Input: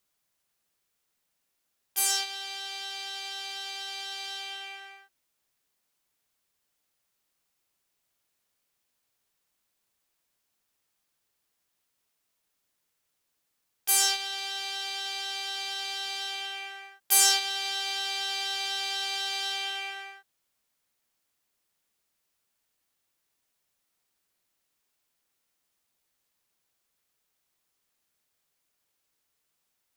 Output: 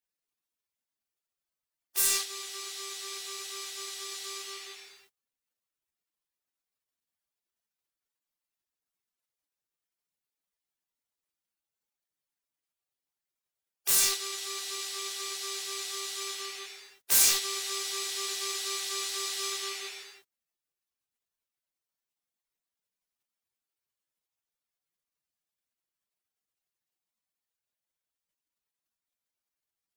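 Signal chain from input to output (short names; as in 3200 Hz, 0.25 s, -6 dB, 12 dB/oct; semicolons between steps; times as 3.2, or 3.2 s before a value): overloaded stage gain 17.5 dB; spectral gate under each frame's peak -15 dB weak; gain +8.5 dB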